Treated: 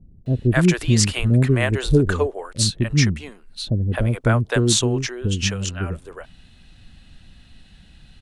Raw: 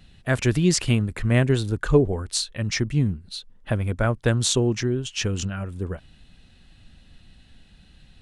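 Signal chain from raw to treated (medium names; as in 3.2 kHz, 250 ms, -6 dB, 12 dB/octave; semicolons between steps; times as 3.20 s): bands offset in time lows, highs 260 ms, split 460 Hz; trim +4 dB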